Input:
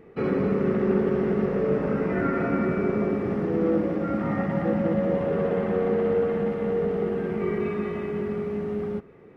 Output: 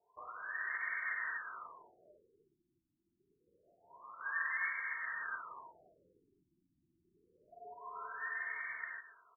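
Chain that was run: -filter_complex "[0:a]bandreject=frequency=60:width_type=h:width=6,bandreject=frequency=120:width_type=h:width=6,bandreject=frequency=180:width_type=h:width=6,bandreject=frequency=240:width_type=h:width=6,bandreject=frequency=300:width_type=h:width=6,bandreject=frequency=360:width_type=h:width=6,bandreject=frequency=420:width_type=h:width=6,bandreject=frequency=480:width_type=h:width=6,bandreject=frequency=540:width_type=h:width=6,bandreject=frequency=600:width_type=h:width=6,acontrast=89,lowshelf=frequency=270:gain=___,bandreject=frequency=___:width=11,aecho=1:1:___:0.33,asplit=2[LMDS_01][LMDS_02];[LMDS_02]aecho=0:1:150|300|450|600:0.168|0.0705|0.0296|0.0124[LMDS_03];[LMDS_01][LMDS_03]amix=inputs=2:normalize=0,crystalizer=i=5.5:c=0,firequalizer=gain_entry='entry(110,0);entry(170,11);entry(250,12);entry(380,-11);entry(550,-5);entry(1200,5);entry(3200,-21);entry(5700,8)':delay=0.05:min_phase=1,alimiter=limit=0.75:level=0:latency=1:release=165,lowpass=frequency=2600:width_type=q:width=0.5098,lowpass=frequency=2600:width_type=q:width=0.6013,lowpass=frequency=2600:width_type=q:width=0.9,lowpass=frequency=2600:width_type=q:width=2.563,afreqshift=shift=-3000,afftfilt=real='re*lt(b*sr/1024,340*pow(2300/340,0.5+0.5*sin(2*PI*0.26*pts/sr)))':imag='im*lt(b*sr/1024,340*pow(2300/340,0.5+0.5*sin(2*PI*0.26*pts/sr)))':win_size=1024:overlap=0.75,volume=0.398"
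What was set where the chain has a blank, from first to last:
6, 2200, 3.5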